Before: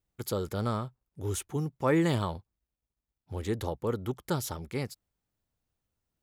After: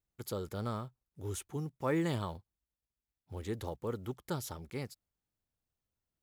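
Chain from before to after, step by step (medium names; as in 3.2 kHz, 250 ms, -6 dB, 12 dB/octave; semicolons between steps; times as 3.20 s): block-companded coder 7-bit; trim -6.5 dB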